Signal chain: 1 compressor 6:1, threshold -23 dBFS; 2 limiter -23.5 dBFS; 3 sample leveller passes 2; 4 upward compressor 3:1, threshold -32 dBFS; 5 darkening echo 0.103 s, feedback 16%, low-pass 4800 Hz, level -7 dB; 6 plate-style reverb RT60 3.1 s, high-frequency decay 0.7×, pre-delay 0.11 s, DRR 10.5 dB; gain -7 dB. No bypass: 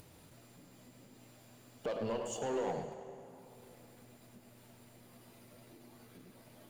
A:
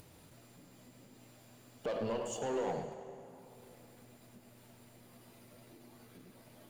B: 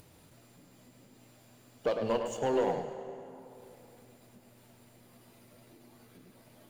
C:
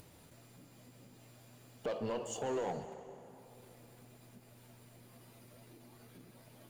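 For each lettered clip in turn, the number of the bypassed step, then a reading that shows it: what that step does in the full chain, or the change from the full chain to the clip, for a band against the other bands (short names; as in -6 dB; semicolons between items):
1, mean gain reduction 2.5 dB; 2, mean gain reduction 2.5 dB; 5, echo-to-direct -5.5 dB to -10.5 dB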